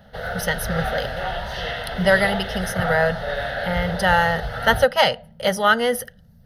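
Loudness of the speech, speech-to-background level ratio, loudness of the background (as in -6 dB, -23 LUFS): -21.0 LUFS, 7.0 dB, -28.0 LUFS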